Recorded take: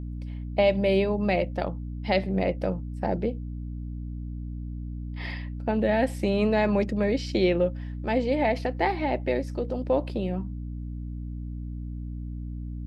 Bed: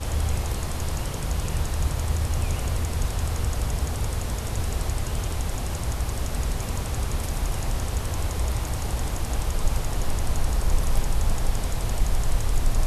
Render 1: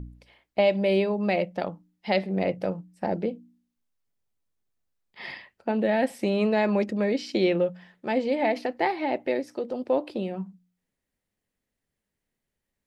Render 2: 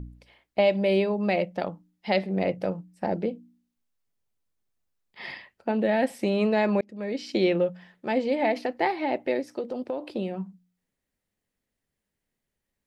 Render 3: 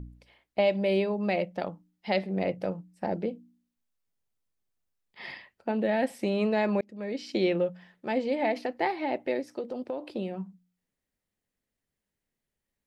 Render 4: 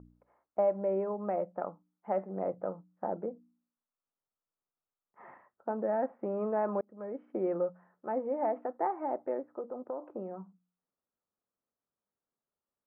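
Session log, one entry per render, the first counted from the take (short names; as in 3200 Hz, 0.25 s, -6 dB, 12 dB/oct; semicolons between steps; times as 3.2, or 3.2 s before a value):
de-hum 60 Hz, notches 5
6.81–7.36 fade in; 9.6–10.03 compressor, threshold -26 dBFS
gain -3 dB
elliptic low-pass 1300 Hz, stop band 70 dB; tilt +4 dB/oct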